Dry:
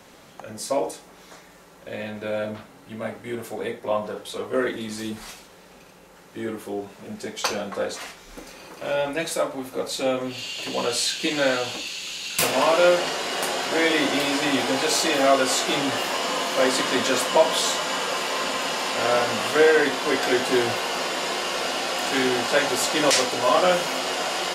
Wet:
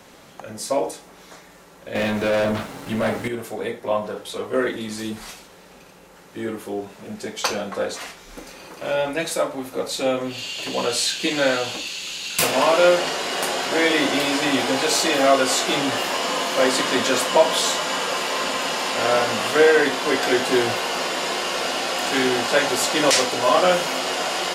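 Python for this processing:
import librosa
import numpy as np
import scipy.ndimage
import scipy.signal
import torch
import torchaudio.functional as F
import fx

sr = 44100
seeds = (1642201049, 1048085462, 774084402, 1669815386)

y = fx.leveller(x, sr, passes=3, at=(1.95, 3.28))
y = y * 10.0 ** (2.0 / 20.0)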